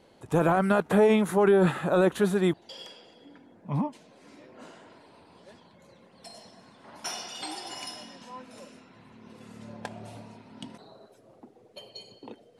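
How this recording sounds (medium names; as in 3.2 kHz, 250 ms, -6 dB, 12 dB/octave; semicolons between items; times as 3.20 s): noise floor -58 dBFS; spectral tilt -5.5 dB/octave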